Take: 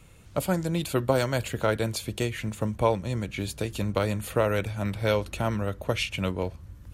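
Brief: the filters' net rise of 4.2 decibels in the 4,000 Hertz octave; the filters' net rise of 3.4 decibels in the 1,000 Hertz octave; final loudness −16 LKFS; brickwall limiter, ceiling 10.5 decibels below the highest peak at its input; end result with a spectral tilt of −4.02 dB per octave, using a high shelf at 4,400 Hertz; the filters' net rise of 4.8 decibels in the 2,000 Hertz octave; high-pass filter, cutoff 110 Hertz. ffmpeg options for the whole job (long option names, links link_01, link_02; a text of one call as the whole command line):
ffmpeg -i in.wav -af "highpass=110,equalizer=frequency=1000:width_type=o:gain=3,equalizer=frequency=2000:width_type=o:gain=5,equalizer=frequency=4000:width_type=o:gain=6.5,highshelf=frequency=4400:gain=-6.5,volume=14dB,alimiter=limit=-3.5dB:level=0:latency=1" out.wav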